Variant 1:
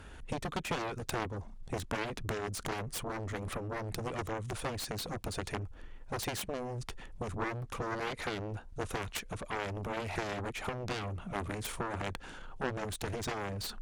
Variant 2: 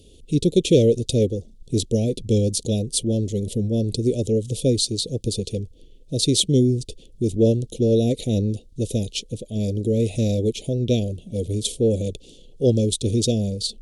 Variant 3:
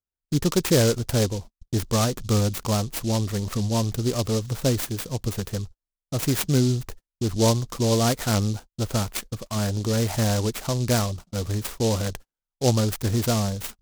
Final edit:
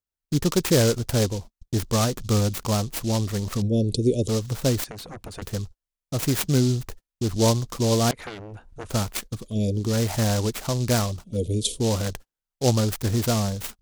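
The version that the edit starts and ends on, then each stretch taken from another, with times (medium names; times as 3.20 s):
3
3.62–4.28 s: from 2
4.84–5.42 s: from 1
8.11–8.90 s: from 1
9.42–9.83 s: from 2, crossfade 0.24 s
11.30–11.81 s: from 2, crossfade 0.16 s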